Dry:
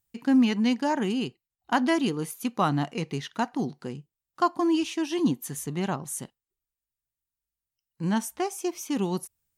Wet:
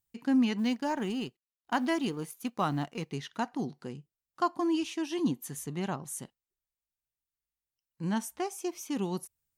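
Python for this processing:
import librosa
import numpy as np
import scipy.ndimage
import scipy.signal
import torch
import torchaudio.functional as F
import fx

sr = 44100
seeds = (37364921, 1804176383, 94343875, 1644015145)

y = fx.law_mismatch(x, sr, coded='A', at=(0.58, 3.12))
y = y * 10.0 ** (-5.0 / 20.0)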